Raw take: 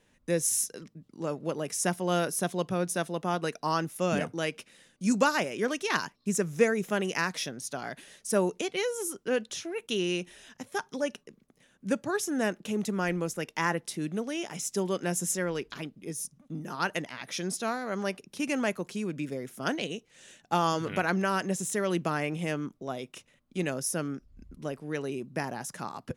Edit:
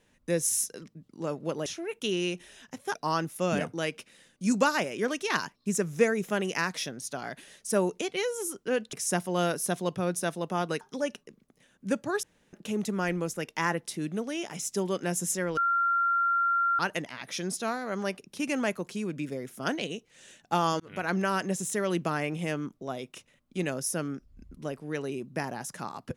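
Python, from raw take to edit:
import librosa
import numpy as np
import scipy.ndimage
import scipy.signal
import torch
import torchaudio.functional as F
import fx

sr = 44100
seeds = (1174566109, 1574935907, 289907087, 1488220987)

y = fx.edit(x, sr, fx.swap(start_s=1.66, length_s=1.88, other_s=9.53, other_length_s=1.28),
    fx.room_tone_fill(start_s=12.23, length_s=0.3),
    fx.bleep(start_s=15.57, length_s=1.22, hz=1380.0, db=-22.5),
    fx.fade_in_span(start_s=20.8, length_s=0.36), tone=tone)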